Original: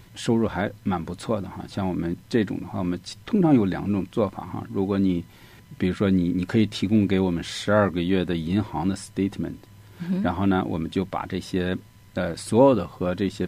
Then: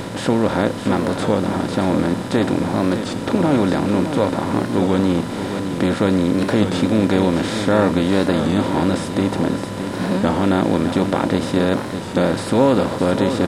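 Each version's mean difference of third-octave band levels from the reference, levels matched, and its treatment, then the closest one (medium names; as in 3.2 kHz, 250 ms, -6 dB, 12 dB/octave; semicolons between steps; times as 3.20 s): 9.5 dB: spectral levelling over time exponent 0.4; on a send: delay 612 ms -8.5 dB; on the sum: warped record 33 1/3 rpm, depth 100 cents; trim -1.5 dB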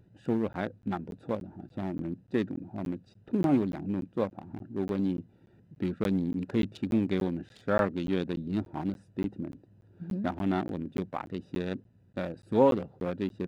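5.0 dB: local Wiener filter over 41 samples; high-pass 160 Hz 6 dB/octave; wow and flutter 24 cents; crackling interface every 0.29 s, samples 512, zero, from 0.53 s; trim -5 dB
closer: second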